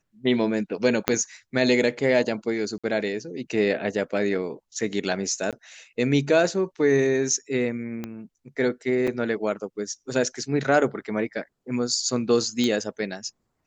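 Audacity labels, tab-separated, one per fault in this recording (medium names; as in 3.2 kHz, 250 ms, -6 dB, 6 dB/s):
1.080000	1.080000	pop -4 dBFS
2.780000	2.840000	dropout 56 ms
5.510000	5.530000	dropout 17 ms
8.040000	8.040000	pop -18 dBFS
9.070000	9.080000	dropout 5.7 ms
12.640000	12.640000	pop -13 dBFS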